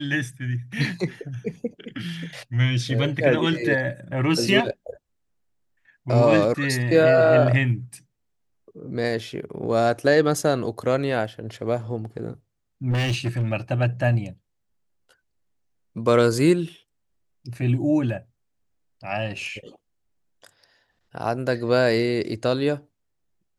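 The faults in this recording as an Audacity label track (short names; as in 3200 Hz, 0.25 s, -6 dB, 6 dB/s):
12.900000	13.530000	clipped -19.5 dBFS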